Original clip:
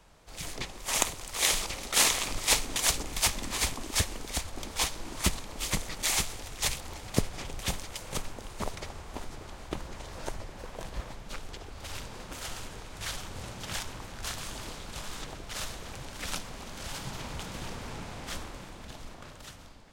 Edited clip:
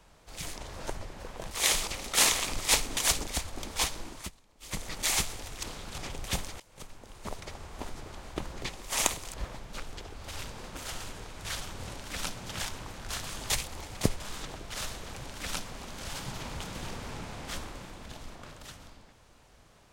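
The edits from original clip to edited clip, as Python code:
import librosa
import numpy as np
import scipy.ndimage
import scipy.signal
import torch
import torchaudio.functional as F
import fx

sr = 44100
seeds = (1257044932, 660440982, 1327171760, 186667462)

y = fx.edit(x, sr, fx.swap(start_s=0.58, length_s=0.72, other_s=9.97, other_length_s=0.93),
    fx.cut(start_s=3.06, length_s=1.21),
    fx.fade_down_up(start_s=4.99, length_s=0.93, db=-22.5, fade_s=0.32),
    fx.swap(start_s=6.63, length_s=0.7, other_s=14.64, other_length_s=0.35),
    fx.fade_in_from(start_s=7.95, length_s=1.22, floor_db=-22.0),
    fx.duplicate(start_s=16.03, length_s=0.42, to_s=13.5), tone=tone)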